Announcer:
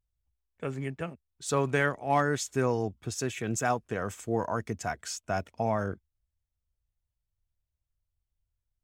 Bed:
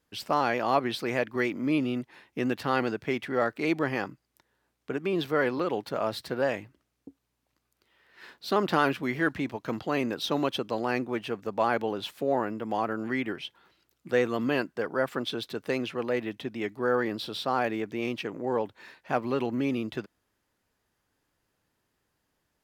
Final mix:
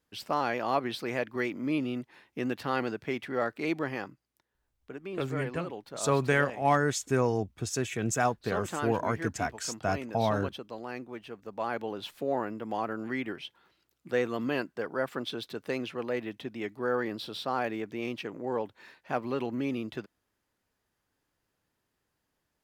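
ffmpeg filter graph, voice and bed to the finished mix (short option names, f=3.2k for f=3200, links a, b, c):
-filter_complex "[0:a]adelay=4550,volume=1dB[a];[1:a]volume=3.5dB,afade=t=out:st=3.68:d=0.85:silence=0.446684,afade=t=in:st=11.37:d=0.79:silence=0.446684[b];[a][b]amix=inputs=2:normalize=0"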